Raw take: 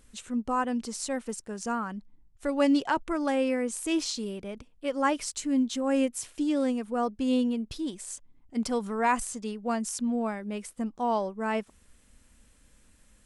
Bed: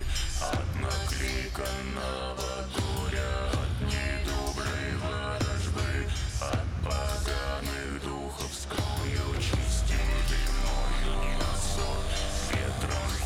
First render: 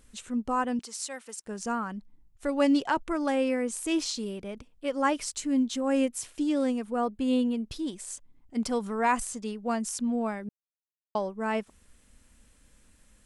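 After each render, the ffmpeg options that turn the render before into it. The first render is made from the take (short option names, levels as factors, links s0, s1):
-filter_complex "[0:a]asettb=1/sr,asplit=3[s0][s1][s2];[s0]atrim=end=0.794[s3];[s1]atrim=start=0.79:end=1.46,asetpts=PTS-STARTPTS,afade=t=in:d=0.004:c=qsin,afade=t=out:st=0.666:d=0.004:c=qsin,highpass=f=1300:p=1[s4];[s2]atrim=start=1.456[s5];[s3][s4]acrossfade=d=0.004:c1=hsin:c2=qsin[s6];[s6][s5]acrossfade=d=0.004:c1=qsin:c2=hsin,asettb=1/sr,asplit=3[s7][s8][s9];[s7]atrim=end=6.964[s10];[s8]atrim=start=6.96:end=7.54,asetpts=PTS-STARTPTS,afade=t=in:d=0.004:c=qsin,afade=t=out:st=0.576:d=0.004:c=qsin,equalizer=f=5700:t=o:w=0.31:g=-12.5[s11];[s9]atrim=start=7.536[s12];[s10][s11]acrossfade=d=0.004:c1=hsin:c2=qsin[s13];[s13][s12]acrossfade=d=0.004:c1=qsin:c2=hsin,asplit=3[s14][s15][s16];[s14]atrim=end=10.49,asetpts=PTS-STARTPTS,afade=t=out:st=10.486:d=0.004:c=hsin[s17];[s15]atrim=start=10.49:end=11.15,asetpts=PTS-STARTPTS,volume=0[s18];[s16]atrim=start=11.15,asetpts=PTS-STARTPTS,afade=t=in:d=0.004:c=hsin[s19];[s17][s18][s19]concat=n=3:v=0:a=1"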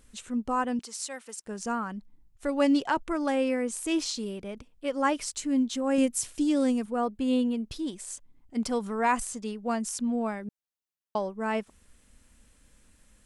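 -filter_complex "[0:a]asettb=1/sr,asplit=3[s0][s1][s2];[s0]atrim=end=5.984[s3];[s1]atrim=start=5.98:end=6.86,asetpts=PTS-STARTPTS,afade=t=in:d=0.004:c=qsin,afade=t=out:st=0.876:d=0.004:c=qsin,bass=f=250:g=6,treble=f=4000:g=6[s4];[s2]atrim=start=6.856[s5];[s3][s4]acrossfade=d=0.004:c1=hsin:c2=qsin[s6];[s6][s5]acrossfade=d=0.004:c1=qsin:c2=hsin"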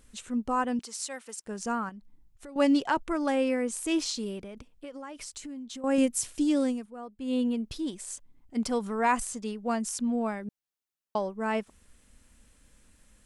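-filter_complex "[0:a]asettb=1/sr,asplit=3[s0][s1][s2];[s0]atrim=end=1.894[s3];[s1]atrim=start=1.89:end=2.56,asetpts=PTS-STARTPTS,afade=t=in:d=0.004:c=qsin,afade=t=out:st=0.666:d=0.004:c=qsin,acompressor=threshold=0.00631:ratio=4:attack=3.2:release=140:knee=1:detection=peak[s4];[s2]atrim=start=2.556[s5];[s3][s4]acrossfade=d=0.004:c1=hsin:c2=qsin[s6];[s6][s5]acrossfade=d=0.004:c1=qsin:c2=hsin,asettb=1/sr,asplit=3[s7][s8][s9];[s7]atrim=end=4.434[s10];[s8]atrim=start=4.43:end=5.84,asetpts=PTS-STARTPTS,afade=t=in:d=0.004:c=qsin,afade=t=out:st=1.406:d=0.004:c=qsin,acompressor=threshold=0.0141:ratio=16:attack=3.2:release=140:knee=1:detection=peak[s11];[s9]atrim=start=5.836[s12];[s10][s11]acrossfade=d=0.004:c1=hsin:c2=qsin[s13];[s13][s12]acrossfade=d=0.004:c1=qsin:c2=hsin,asplit=3[s14][s15][s16];[s14]atrim=end=6.88,asetpts=PTS-STARTPTS,afade=t=out:st=6.56:d=0.32:silence=0.211349[s17];[s15]atrim=start=6.88:end=7.15,asetpts=PTS-STARTPTS,volume=0.211[s18];[s16]atrim=start=7.15,asetpts=PTS-STARTPTS,afade=t=in:d=0.32:silence=0.211349[s19];[s17][s18][s19]concat=n=3:v=0:a=1"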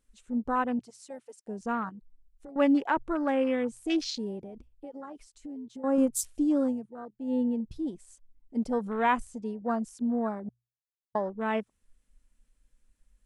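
-af "afwtdn=0.0141,bandreject=f=60:t=h:w=6,bandreject=f=120:t=h:w=6"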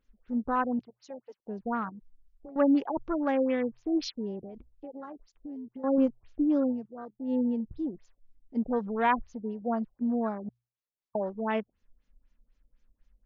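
-af "afftfilt=real='re*lt(b*sr/1024,740*pow(7300/740,0.5+0.5*sin(2*PI*4*pts/sr)))':imag='im*lt(b*sr/1024,740*pow(7300/740,0.5+0.5*sin(2*PI*4*pts/sr)))':win_size=1024:overlap=0.75"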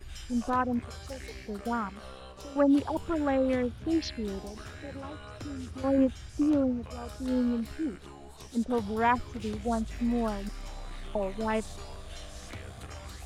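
-filter_complex "[1:a]volume=0.224[s0];[0:a][s0]amix=inputs=2:normalize=0"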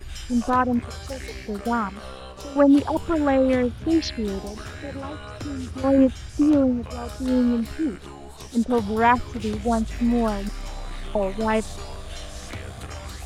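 -af "volume=2.37"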